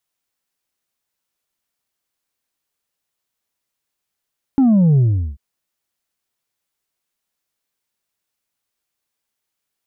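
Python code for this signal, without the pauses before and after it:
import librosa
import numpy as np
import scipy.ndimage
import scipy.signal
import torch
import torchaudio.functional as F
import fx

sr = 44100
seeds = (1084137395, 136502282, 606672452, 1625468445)

y = fx.sub_drop(sr, level_db=-10.0, start_hz=280.0, length_s=0.79, drive_db=3.0, fade_s=0.39, end_hz=65.0)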